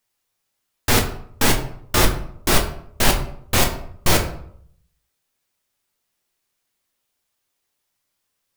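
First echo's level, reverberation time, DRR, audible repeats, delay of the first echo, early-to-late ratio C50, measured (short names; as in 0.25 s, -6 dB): none, 0.65 s, 2.0 dB, none, none, 9.0 dB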